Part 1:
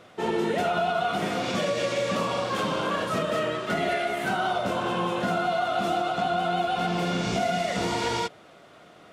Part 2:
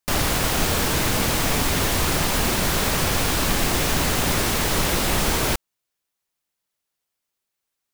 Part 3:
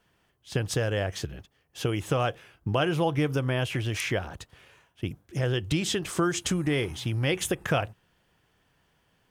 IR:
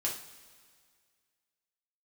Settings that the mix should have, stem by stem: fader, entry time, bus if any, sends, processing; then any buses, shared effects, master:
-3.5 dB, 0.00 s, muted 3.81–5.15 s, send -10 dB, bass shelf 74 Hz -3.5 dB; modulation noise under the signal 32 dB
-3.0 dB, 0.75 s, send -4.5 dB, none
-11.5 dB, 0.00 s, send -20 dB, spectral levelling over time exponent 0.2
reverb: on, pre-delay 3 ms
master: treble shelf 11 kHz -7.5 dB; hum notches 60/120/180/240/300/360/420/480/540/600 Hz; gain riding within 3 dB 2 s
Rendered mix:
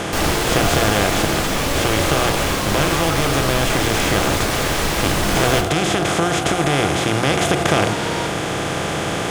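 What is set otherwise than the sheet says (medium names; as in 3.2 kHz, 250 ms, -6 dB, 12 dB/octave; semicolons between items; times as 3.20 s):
stem 2: entry 0.75 s -> 0.05 s; stem 3 -11.5 dB -> 0.0 dB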